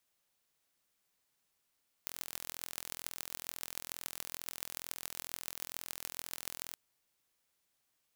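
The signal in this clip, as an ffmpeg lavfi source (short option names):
-f lavfi -i "aevalsrc='0.316*eq(mod(n,1045),0)*(0.5+0.5*eq(mod(n,6270),0))':d=4.68:s=44100"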